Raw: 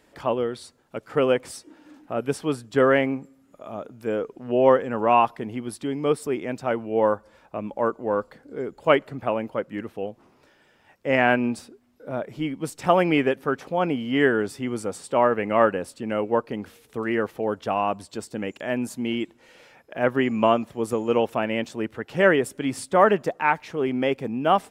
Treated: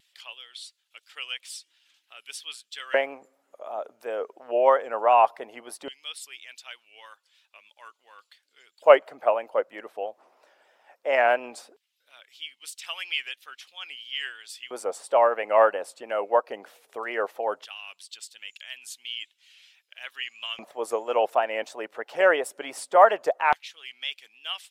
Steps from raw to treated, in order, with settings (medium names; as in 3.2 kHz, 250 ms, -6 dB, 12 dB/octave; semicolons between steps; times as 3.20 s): LFO high-pass square 0.17 Hz 630–3200 Hz; harmonic-percussive split percussive +6 dB; vibrato 3 Hz 62 cents; trim -7 dB